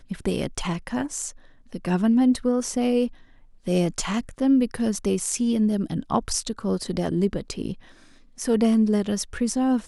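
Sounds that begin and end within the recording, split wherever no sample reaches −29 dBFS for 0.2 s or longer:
0:01.74–0:03.07
0:03.67–0:07.73

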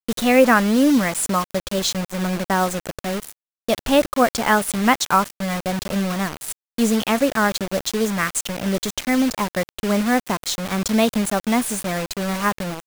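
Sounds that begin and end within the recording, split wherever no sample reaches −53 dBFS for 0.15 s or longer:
0:03.68–0:06.52

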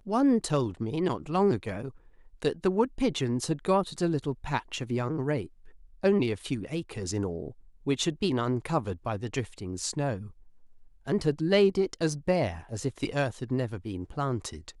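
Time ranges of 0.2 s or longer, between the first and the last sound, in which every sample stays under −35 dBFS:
0:01.89–0:02.42
0:05.46–0:06.03
0:07.50–0:07.87
0:10.26–0:11.08

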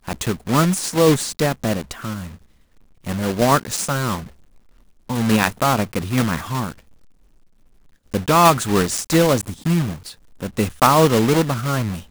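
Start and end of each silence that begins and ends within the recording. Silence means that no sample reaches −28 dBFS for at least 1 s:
0:06.72–0:08.14

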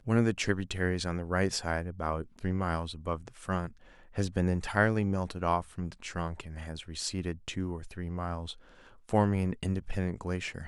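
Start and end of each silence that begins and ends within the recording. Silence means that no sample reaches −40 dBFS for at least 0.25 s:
0:03.68–0:04.16
0:08.53–0:09.09

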